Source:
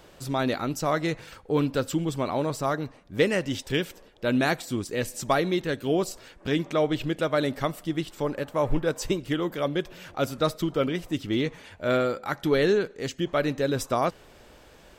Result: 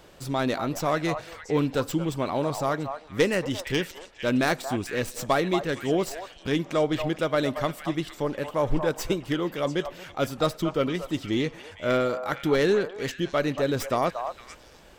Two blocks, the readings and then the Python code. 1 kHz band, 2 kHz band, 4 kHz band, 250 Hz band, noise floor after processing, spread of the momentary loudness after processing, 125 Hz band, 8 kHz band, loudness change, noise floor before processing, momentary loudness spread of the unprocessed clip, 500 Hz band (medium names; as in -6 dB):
+1.0 dB, +0.5 dB, 0.0 dB, 0.0 dB, -50 dBFS, 7 LU, -0.5 dB, -0.5 dB, 0.0 dB, -53 dBFS, 7 LU, +0.5 dB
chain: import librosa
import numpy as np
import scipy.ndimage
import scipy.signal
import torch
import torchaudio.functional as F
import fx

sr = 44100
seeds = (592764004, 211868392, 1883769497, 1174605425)

p1 = fx.tracing_dist(x, sr, depth_ms=0.065)
y = p1 + fx.echo_stepped(p1, sr, ms=230, hz=850.0, octaves=1.4, feedback_pct=70, wet_db=-5.0, dry=0)